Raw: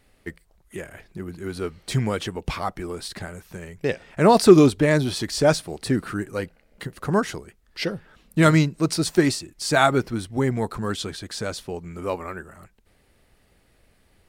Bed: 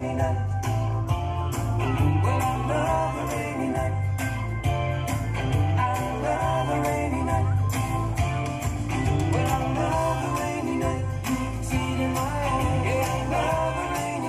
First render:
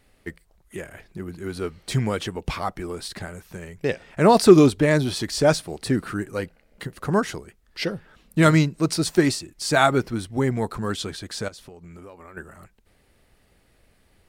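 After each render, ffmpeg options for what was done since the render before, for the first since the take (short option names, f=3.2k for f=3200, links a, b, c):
-filter_complex "[0:a]asettb=1/sr,asplit=3[a][b][c];[a]atrim=end=11.484[d];[b]atrim=start=11.48:end=12.37,asetpts=PTS-STARTPTS,afade=t=in:d=0.004:c=qsin,afade=t=out:st=0.886:d=0.004:c=qsin,acompressor=threshold=-39dB:ratio=10:attack=3.2:release=140:knee=1:detection=peak[e];[c]atrim=start=12.366[f];[d][e]acrossfade=d=0.004:c1=hsin:c2=qsin[g];[g][f]acrossfade=d=0.004:c1=qsin:c2=hsin"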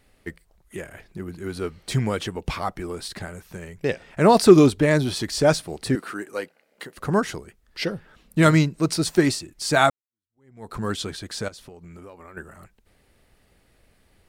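-filter_complex "[0:a]asettb=1/sr,asplit=3[a][b][c];[a]atrim=end=5.954[d];[b]atrim=start=5.95:end=6.97,asetpts=PTS-STARTPTS,afade=t=in:d=0.004:c=qsin,afade=t=out:st=1.016:d=0.004:c=qsin,highpass=350[e];[c]atrim=start=6.966[f];[d][e]acrossfade=d=0.004:c1=hsin:c2=qsin[g];[g][f]acrossfade=d=0.004:c1=qsin:c2=hsin,asplit=2[h][i];[h]atrim=end=9.9,asetpts=PTS-STARTPTS,afade=t=out:st=9.896:d=0.004:c=hsin[j];[i]atrim=start=9.9,asetpts=PTS-STARTPTS,afade=t=in:d=0.85:c=exp[k];[j][k]concat=n=2:v=0:a=1"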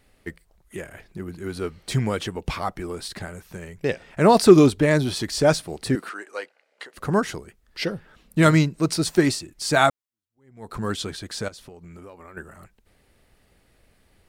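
-filter_complex "[0:a]asettb=1/sr,asplit=3[a][b][c];[a]atrim=end=6.094[d];[b]atrim=start=6.09:end=6.94,asetpts=PTS-STARTPTS,afade=t=in:d=0.004:c=qsin,afade=t=out:st=0.846:d=0.004:c=qsin,highpass=530,lowpass=7.1k[e];[c]atrim=start=6.936[f];[d][e]acrossfade=d=0.004:c1=hsin:c2=qsin[g];[g][f]acrossfade=d=0.004:c1=qsin:c2=hsin"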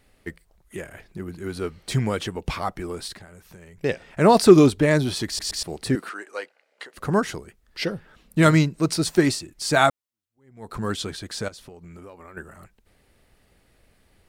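-filter_complex "[0:a]asettb=1/sr,asplit=3[a][b][c];[a]atrim=end=3.164[d];[b]atrim=start=3.16:end=3.78,asetpts=PTS-STARTPTS,afade=t=in:d=0.004:c=qsin,afade=t=out:st=0.616:d=0.004:c=qsin,acompressor=threshold=-46dB:ratio=2.5:attack=3.2:release=140:knee=1:detection=peak[e];[c]atrim=start=3.776[f];[d][e]acrossfade=d=0.004:c1=hsin:c2=qsin[g];[g][f]acrossfade=d=0.004:c1=qsin:c2=hsin,asplit=4[h][i][j][k];[h]atrim=end=5.392[l];[i]atrim=start=5.268:end=5.392[m];[j]atrim=start=5.268:end=5.392[n];[k]atrim=start=5.628[o];[l][m]acrossfade=d=0.004:c1=hsin:c2=hsin[p];[p][n]acrossfade=d=0.004:c1=hsin:c2=hsin[q];[q][o]acrossfade=d=0.004:c1=hsin:c2=hsin"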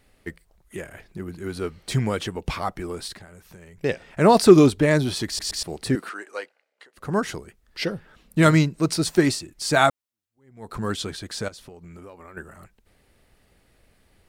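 -filter_complex "[0:a]asplit=3[a][b][c];[a]atrim=end=6.73,asetpts=PTS-STARTPTS,afade=t=out:st=6.37:d=0.36:silence=0.298538[d];[b]atrim=start=6.73:end=6.93,asetpts=PTS-STARTPTS,volume=-10.5dB[e];[c]atrim=start=6.93,asetpts=PTS-STARTPTS,afade=t=in:d=0.36:silence=0.298538[f];[d][e][f]concat=n=3:v=0:a=1"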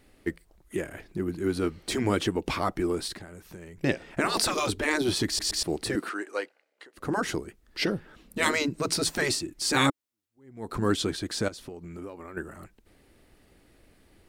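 -af "afftfilt=real='re*lt(hypot(re,im),0.447)':imag='im*lt(hypot(re,im),0.447)':win_size=1024:overlap=0.75,equalizer=f=310:w=2.1:g=8"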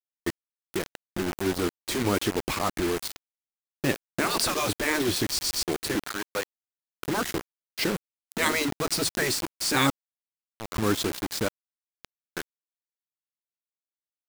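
-af "acrusher=bits=4:mix=0:aa=0.000001"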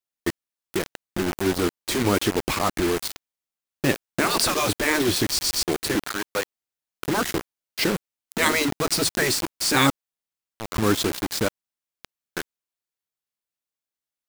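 -af "volume=4dB"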